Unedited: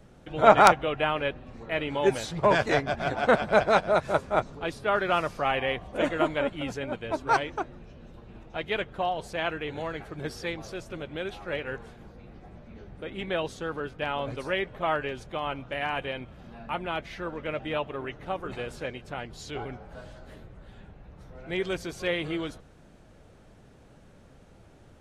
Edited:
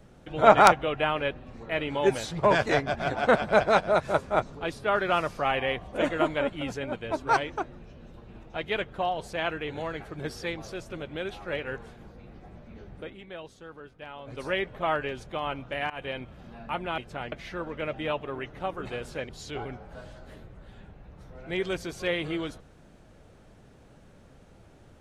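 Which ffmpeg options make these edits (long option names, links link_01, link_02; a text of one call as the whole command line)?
ffmpeg -i in.wav -filter_complex "[0:a]asplit=7[link_01][link_02][link_03][link_04][link_05][link_06][link_07];[link_01]atrim=end=13.19,asetpts=PTS-STARTPTS,afade=type=out:start_time=13:duration=0.19:silence=0.251189[link_08];[link_02]atrim=start=13.19:end=14.25,asetpts=PTS-STARTPTS,volume=-12dB[link_09];[link_03]atrim=start=14.25:end=15.9,asetpts=PTS-STARTPTS,afade=type=in:duration=0.19:silence=0.251189,afade=type=out:start_time=1.646:duration=0.004:curve=hsin:silence=0.0891251[link_10];[link_04]atrim=start=15.9:end=16.982,asetpts=PTS-STARTPTS,afade=type=in:duration=0.27:curve=qsin:silence=0.0891251[link_11];[link_05]atrim=start=18.948:end=19.292[link_12];[link_06]atrim=start=16.978:end=18.952[link_13];[link_07]atrim=start=19.288[link_14];[link_08][link_09][link_10][link_11]concat=n=4:v=0:a=1[link_15];[link_15][link_12]acrossfade=duration=0.004:curve1=hsin:curve2=hsin[link_16];[link_16][link_13]acrossfade=duration=0.004:curve1=hsin:curve2=hsin[link_17];[link_17][link_14]acrossfade=duration=0.004:curve1=hsin:curve2=hsin" out.wav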